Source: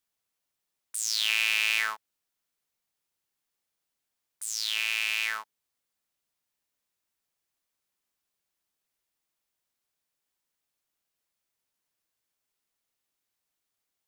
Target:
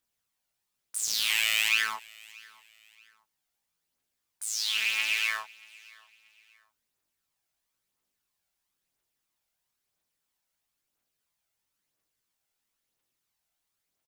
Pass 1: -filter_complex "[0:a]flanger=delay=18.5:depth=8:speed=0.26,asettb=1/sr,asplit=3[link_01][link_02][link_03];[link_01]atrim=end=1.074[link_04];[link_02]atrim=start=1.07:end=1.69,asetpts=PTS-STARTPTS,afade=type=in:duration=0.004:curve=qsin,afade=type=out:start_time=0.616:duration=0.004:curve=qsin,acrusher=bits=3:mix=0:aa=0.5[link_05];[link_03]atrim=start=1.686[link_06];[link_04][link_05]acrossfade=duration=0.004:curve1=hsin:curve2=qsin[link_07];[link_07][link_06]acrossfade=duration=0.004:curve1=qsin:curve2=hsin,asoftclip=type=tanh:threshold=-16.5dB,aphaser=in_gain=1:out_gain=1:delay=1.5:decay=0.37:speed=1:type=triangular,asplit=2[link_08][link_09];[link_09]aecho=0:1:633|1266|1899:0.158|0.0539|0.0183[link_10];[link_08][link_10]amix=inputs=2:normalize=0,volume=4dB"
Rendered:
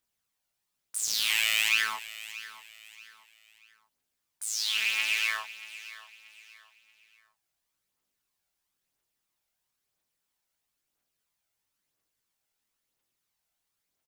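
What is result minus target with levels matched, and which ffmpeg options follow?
echo-to-direct +8 dB
-filter_complex "[0:a]flanger=delay=18.5:depth=8:speed=0.26,asettb=1/sr,asplit=3[link_01][link_02][link_03];[link_01]atrim=end=1.074[link_04];[link_02]atrim=start=1.07:end=1.69,asetpts=PTS-STARTPTS,afade=type=in:duration=0.004:curve=qsin,afade=type=out:start_time=0.616:duration=0.004:curve=qsin,acrusher=bits=3:mix=0:aa=0.5[link_05];[link_03]atrim=start=1.686[link_06];[link_04][link_05]acrossfade=duration=0.004:curve1=hsin:curve2=qsin[link_07];[link_07][link_06]acrossfade=duration=0.004:curve1=qsin:curve2=hsin,asoftclip=type=tanh:threshold=-16.5dB,aphaser=in_gain=1:out_gain=1:delay=1.5:decay=0.37:speed=1:type=triangular,asplit=2[link_08][link_09];[link_09]aecho=0:1:633|1266:0.0631|0.0215[link_10];[link_08][link_10]amix=inputs=2:normalize=0,volume=4dB"

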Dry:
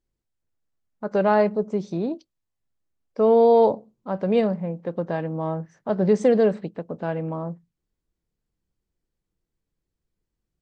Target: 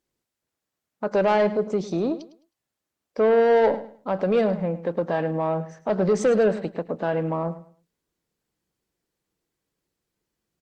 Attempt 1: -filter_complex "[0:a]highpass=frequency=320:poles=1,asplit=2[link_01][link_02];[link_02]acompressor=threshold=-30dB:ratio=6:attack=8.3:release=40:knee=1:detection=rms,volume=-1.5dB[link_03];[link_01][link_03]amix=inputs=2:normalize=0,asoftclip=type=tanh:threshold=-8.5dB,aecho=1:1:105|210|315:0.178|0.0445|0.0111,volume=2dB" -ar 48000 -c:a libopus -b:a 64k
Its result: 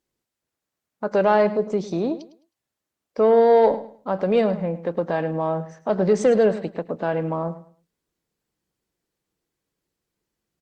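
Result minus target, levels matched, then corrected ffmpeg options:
soft clipping: distortion −10 dB
-filter_complex "[0:a]highpass=frequency=320:poles=1,asplit=2[link_01][link_02];[link_02]acompressor=threshold=-30dB:ratio=6:attack=8.3:release=40:knee=1:detection=rms,volume=-1.5dB[link_03];[link_01][link_03]amix=inputs=2:normalize=0,asoftclip=type=tanh:threshold=-15.5dB,aecho=1:1:105|210|315:0.178|0.0445|0.0111,volume=2dB" -ar 48000 -c:a libopus -b:a 64k

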